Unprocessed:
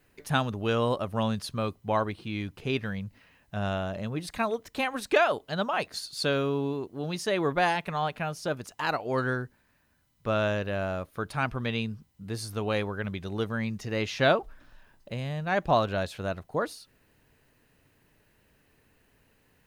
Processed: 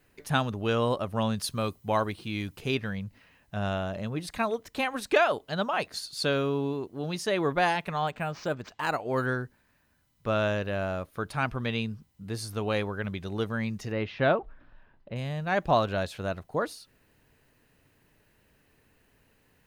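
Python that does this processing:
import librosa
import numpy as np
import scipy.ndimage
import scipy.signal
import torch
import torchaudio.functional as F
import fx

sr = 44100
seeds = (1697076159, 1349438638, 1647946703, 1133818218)

y = fx.high_shelf(x, sr, hz=5400.0, db=10.0, at=(1.39, 2.75))
y = fx.resample_linear(y, sr, factor=4, at=(8.07, 9.26))
y = fx.air_absorb(y, sr, metres=360.0, at=(13.92, 15.16))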